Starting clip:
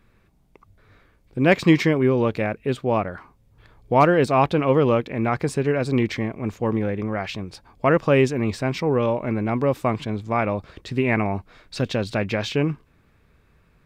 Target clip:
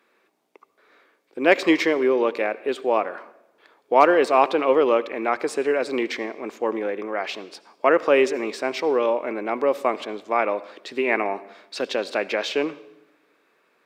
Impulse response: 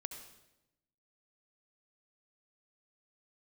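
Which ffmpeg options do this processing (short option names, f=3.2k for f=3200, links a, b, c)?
-filter_complex "[0:a]highpass=f=330:w=0.5412,highpass=f=330:w=1.3066,asplit=2[a][b];[1:a]atrim=start_sample=2205,lowpass=8.2k[c];[b][c]afir=irnorm=-1:irlink=0,volume=-6dB[d];[a][d]amix=inputs=2:normalize=0,volume=-1dB"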